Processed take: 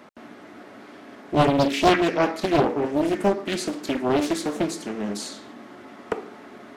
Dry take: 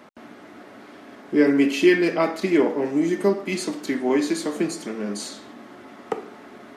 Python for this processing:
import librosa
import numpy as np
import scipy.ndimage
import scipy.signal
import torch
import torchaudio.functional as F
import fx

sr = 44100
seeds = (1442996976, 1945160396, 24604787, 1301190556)

y = fx.doppler_dist(x, sr, depth_ms=0.97)